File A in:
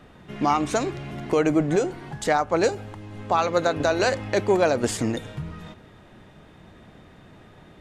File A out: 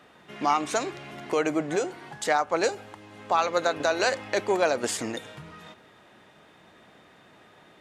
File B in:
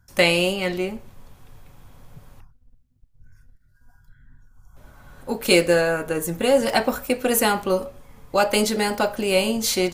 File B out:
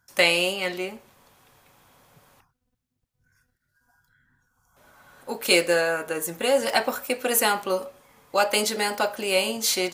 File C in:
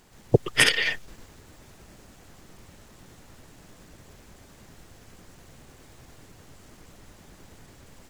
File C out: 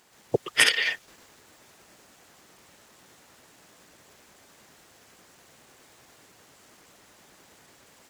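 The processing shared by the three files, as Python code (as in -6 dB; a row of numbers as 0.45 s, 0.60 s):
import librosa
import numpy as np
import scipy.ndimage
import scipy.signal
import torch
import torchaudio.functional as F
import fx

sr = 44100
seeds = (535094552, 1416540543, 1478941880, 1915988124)

y = fx.highpass(x, sr, hz=600.0, slope=6)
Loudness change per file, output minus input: -3.0 LU, -2.5 LU, -1.0 LU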